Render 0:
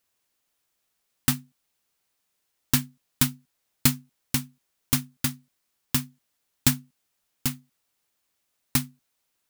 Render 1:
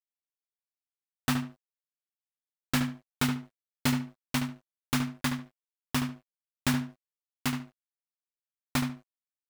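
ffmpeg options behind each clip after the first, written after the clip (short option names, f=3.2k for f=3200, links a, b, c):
-filter_complex "[0:a]asplit=2[a][b];[b]highpass=f=720:p=1,volume=25dB,asoftclip=type=tanh:threshold=-2.5dB[c];[a][c]amix=inputs=2:normalize=0,lowpass=f=1.1k:p=1,volume=-6dB,asplit=2[d][e];[e]adelay=72,lowpass=f=3.1k:p=1,volume=-6.5dB,asplit=2[f][g];[g]adelay=72,lowpass=f=3.1k:p=1,volume=0.24,asplit=2[h][i];[i]adelay=72,lowpass=f=3.1k:p=1,volume=0.24[j];[d][f][h][j]amix=inputs=4:normalize=0,aeval=exprs='sgn(val(0))*max(abs(val(0))-0.00473,0)':c=same,volume=-4.5dB"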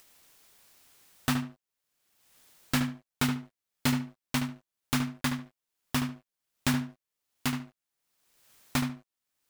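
-af "acompressor=mode=upward:threshold=-32dB:ratio=2.5"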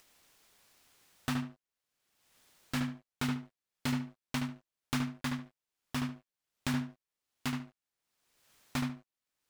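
-af "highshelf=f=9.4k:g=-7.5,alimiter=limit=-18.5dB:level=0:latency=1:release=101,volume=-2.5dB"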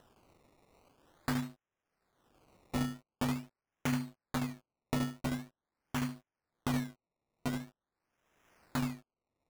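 -af "acrusher=samples=19:mix=1:aa=0.000001:lfo=1:lforange=19:lforate=0.45"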